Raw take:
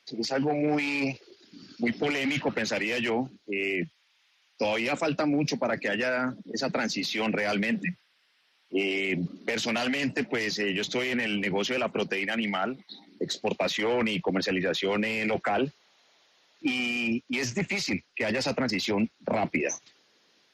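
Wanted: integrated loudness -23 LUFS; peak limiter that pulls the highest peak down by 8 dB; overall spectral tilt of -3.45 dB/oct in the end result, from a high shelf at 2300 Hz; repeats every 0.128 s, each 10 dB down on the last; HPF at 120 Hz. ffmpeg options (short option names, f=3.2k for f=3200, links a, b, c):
-af "highpass=120,highshelf=f=2.3k:g=3.5,alimiter=limit=-21dB:level=0:latency=1,aecho=1:1:128|256|384|512:0.316|0.101|0.0324|0.0104,volume=6.5dB"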